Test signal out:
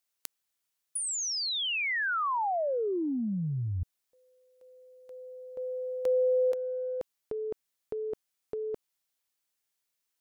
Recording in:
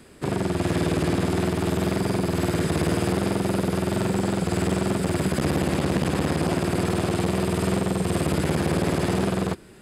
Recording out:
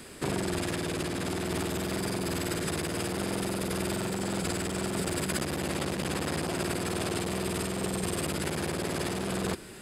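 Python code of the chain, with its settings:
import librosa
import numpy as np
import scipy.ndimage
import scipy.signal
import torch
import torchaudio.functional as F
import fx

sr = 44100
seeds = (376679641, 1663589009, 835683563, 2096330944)

y = fx.high_shelf(x, sr, hz=2600.0, db=5.0)
y = fx.over_compress(y, sr, threshold_db=-28.0, ratio=-1.0)
y = fx.low_shelf(y, sr, hz=350.0, db=-3.5)
y = F.gain(torch.from_numpy(y), -1.5).numpy()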